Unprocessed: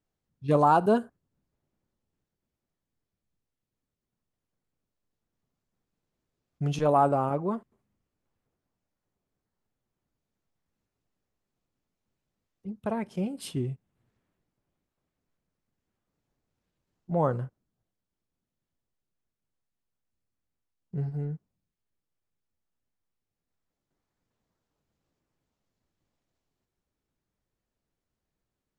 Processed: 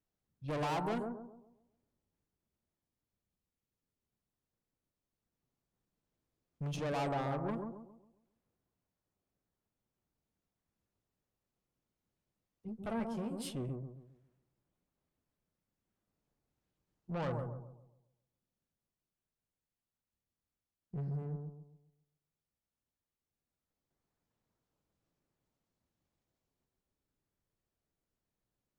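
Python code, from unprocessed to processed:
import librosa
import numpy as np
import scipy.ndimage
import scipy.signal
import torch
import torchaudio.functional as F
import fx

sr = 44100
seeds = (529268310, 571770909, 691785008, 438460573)

y = fx.tube_stage(x, sr, drive_db=30.0, bias=0.3)
y = fx.doubler(y, sr, ms=13.0, db=-5.5, at=(12.67, 13.53))
y = fx.echo_bbd(y, sr, ms=135, stages=1024, feedback_pct=37, wet_db=-4.0)
y = y * 10.0 ** (-4.5 / 20.0)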